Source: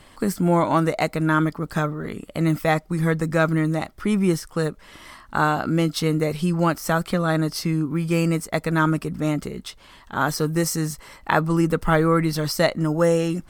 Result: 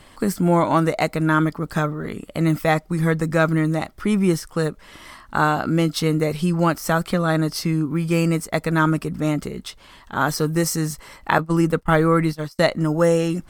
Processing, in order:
0:11.38–0:12.59: noise gate −22 dBFS, range −35 dB
level +1.5 dB

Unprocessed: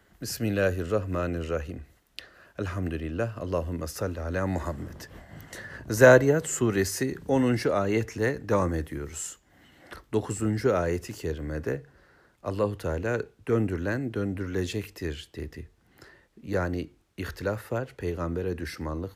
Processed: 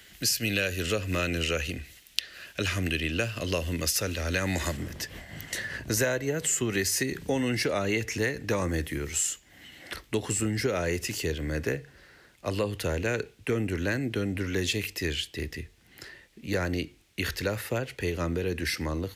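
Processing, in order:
high shelf with overshoot 1,700 Hz +14 dB, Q 1.5, from 0:04.77 +8 dB
downward compressor 16 to 1, threshold −25 dBFS, peak gain reduction 15.5 dB
level +2 dB

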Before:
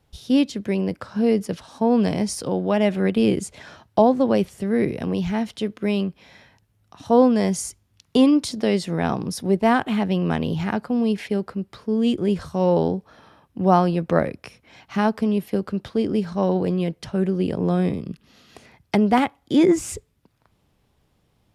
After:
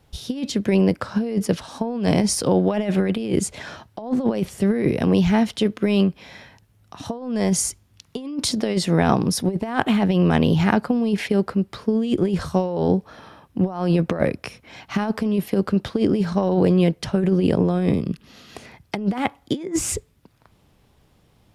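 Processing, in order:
compressor whose output falls as the input rises −22 dBFS, ratio −0.5
level +3.5 dB

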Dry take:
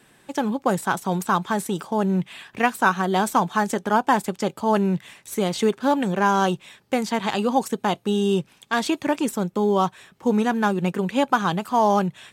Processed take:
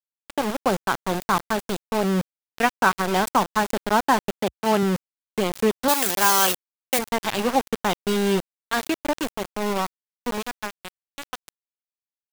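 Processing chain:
fade-out on the ending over 3.90 s
centre clipping without the shift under −22 dBFS
0:04.32–0:04.83: high-pass filter 61 Hz 24 dB per octave
0:05.88–0:06.99: RIAA equalisation recording

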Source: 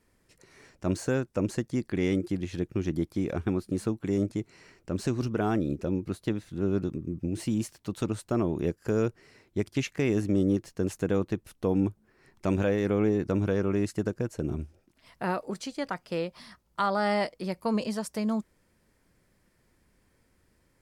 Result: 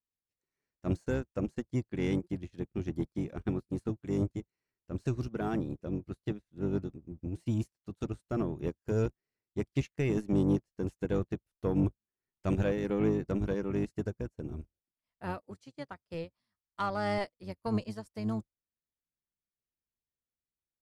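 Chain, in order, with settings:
sub-octave generator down 1 octave, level −4 dB
soft clipping −17 dBFS, distortion −20 dB
expander for the loud parts 2.5 to 1, over −47 dBFS

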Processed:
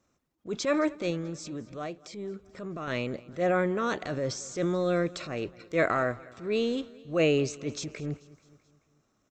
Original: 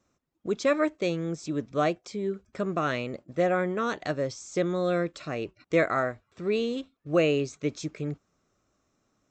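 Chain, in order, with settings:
0:01.10–0:02.88: downward compressor 6 to 1, threshold −33 dBFS, peak gain reduction 11.5 dB
transient designer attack −8 dB, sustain +5 dB
repeating echo 217 ms, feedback 58%, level −22 dB

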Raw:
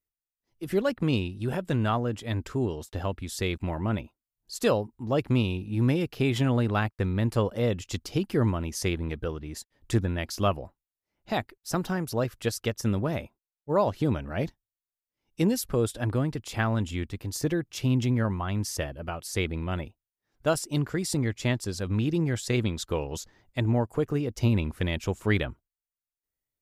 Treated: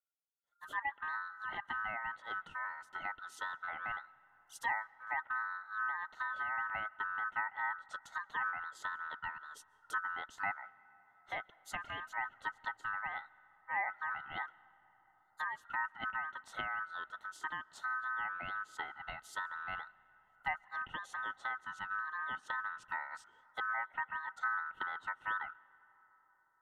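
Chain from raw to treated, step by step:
phaser with its sweep stopped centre 980 Hz, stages 6
treble cut that deepens with the level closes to 700 Hz, closed at −25 dBFS
ring modulation 1,400 Hz
on a send: convolution reverb RT60 5.4 s, pre-delay 95 ms, DRR 23 dB
on the sum: level −6 dB

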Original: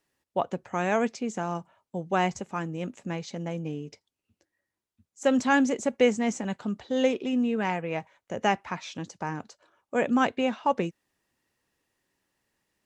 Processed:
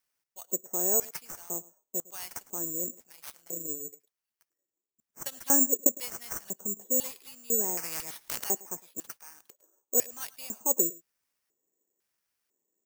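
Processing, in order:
0:03.04–0:03.85: amplitude modulation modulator 140 Hz, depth 55%
0:05.23–0:05.87: transient designer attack +10 dB, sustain −11 dB
auto-filter band-pass square 1 Hz 400–5,700 Hz
single-tap delay 107 ms −21.5 dB
bad sample-rate conversion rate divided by 6×, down none, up zero stuff
0:07.77–0:08.44: every bin compressed towards the loudest bin 10 to 1
level −1.5 dB

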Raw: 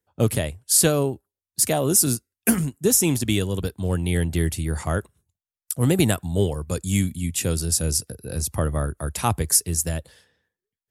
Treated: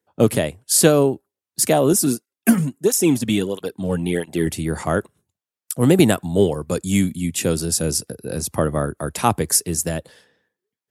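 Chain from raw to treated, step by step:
high-pass filter 210 Hz 12 dB per octave
spectral tilt −1.5 dB per octave
0:01.93–0:04.47: through-zero flanger with one copy inverted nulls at 1.5 Hz, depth 3.2 ms
level +5.5 dB

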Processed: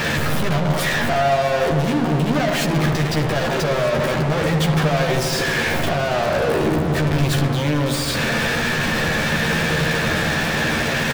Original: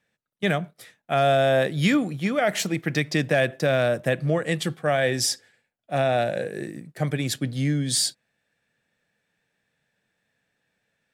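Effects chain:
sign of each sample alone
bass and treble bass +5 dB, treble −12 dB
notch filter 2,000 Hz, Q 19
in parallel at +1.5 dB: output level in coarse steps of 11 dB
on the sum: hard clipping −26 dBFS, distortion −8 dB
double-tracking delay 13 ms −4 dB
on a send: feedback echo with a low-pass in the loop 78 ms, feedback 84%, low-pass 2,000 Hz, level −7 dB
on the sum: level +4.5 dB

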